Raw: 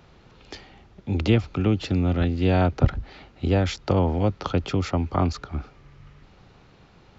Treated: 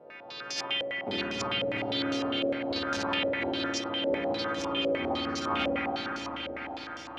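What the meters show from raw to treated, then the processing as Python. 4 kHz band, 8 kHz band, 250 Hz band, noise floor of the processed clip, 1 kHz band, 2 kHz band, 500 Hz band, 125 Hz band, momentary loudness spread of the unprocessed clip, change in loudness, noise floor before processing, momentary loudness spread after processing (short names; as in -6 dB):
+6.5 dB, n/a, -7.5 dB, -44 dBFS, -2.0 dB, +4.0 dB, -3.0 dB, -22.0 dB, 18 LU, -6.5 dB, -54 dBFS, 7 LU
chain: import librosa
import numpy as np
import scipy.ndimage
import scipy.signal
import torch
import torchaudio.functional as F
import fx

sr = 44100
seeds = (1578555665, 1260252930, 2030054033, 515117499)

p1 = fx.freq_snap(x, sr, grid_st=2)
p2 = fx.tremolo_random(p1, sr, seeds[0], hz=3.5, depth_pct=55)
p3 = fx.quant_companded(p2, sr, bits=2)
p4 = p2 + (p3 * librosa.db_to_amplitude(-11.0))
p5 = scipy.signal.sosfilt(scipy.signal.butter(2, 300.0, 'highpass', fs=sr, output='sos'), p4)
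p6 = fx.over_compress(p5, sr, threshold_db=-39.0, ratio=-1.0)
p7 = fx.echo_swell(p6, sr, ms=93, loudest=8, wet_db=-15.5)
p8 = fx.rev_spring(p7, sr, rt60_s=3.9, pass_ms=(54,), chirp_ms=70, drr_db=-6.5)
p9 = fx.filter_held_lowpass(p8, sr, hz=9.9, low_hz=550.0, high_hz=5900.0)
y = p9 * librosa.db_to_amplitude(-3.5)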